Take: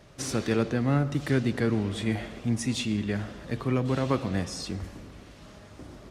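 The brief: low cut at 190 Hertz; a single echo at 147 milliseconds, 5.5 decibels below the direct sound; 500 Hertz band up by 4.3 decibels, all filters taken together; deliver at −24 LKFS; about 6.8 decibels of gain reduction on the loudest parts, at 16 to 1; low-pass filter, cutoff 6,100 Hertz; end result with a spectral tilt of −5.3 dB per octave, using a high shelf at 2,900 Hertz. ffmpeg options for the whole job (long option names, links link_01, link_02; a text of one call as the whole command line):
ffmpeg -i in.wav -af "highpass=190,lowpass=6100,equalizer=frequency=500:width_type=o:gain=5.5,highshelf=frequency=2900:gain=-4.5,acompressor=threshold=-25dB:ratio=16,aecho=1:1:147:0.531,volume=7.5dB" out.wav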